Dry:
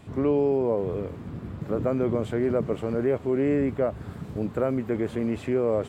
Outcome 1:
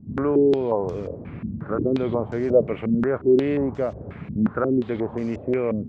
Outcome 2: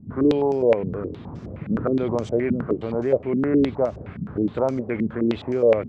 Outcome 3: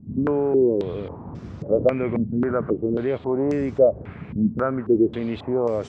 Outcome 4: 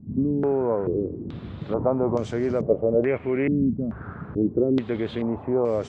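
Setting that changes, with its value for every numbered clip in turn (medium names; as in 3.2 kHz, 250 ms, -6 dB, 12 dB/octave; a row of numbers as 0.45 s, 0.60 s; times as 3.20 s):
step-sequenced low-pass, rate: 5.6 Hz, 9.6 Hz, 3.7 Hz, 2.3 Hz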